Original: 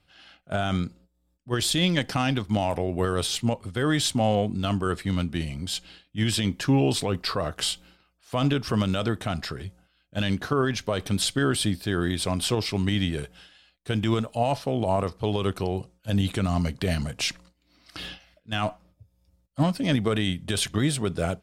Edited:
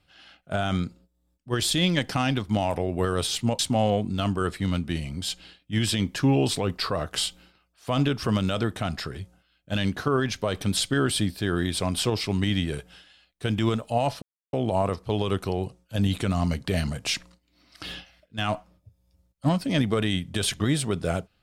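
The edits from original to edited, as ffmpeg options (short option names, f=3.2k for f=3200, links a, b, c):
-filter_complex "[0:a]asplit=3[a][b][c];[a]atrim=end=3.592[d];[b]atrim=start=4.038:end=14.67,asetpts=PTS-STARTPTS,afade=t=out:st=10.628:d=0.004:c=hsin,apad=pad_dur=0.31[e];[c]atrim=start=14.67,asetpts=PTS-STARTPTS,afade=t=in:d=0.004:c=hsin[f];[e][f]concat=n=2:v=0:a=1[g];[d][g]acrossfade=d=0.004:c1=hsin:c2=hsin"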